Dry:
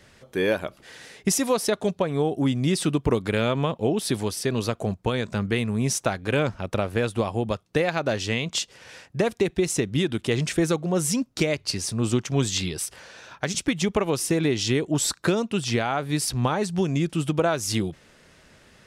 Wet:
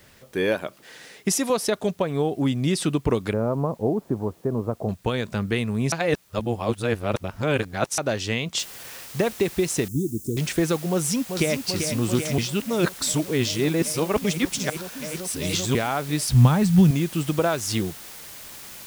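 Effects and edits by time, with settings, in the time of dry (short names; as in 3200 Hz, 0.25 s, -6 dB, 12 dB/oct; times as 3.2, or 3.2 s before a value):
0.55–1.5 HPF 140 Hz
3.33–4.89 inverse Chebyshev low-pass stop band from 6100 Hz, stop band 80 dB
5.92–7.98 reverse
8.59 noise floor step -60 dB -41 dB
9.88–10.37 elliptic band-stop 350–6700 Hz, stop band 50 dB
10.9–11.59 echo throw 0.39 s, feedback 85%, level -7 dB
12.38–15.75 reverse
16.29–16.91 resonant low shelf 250 Hz +10 dB, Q 1.5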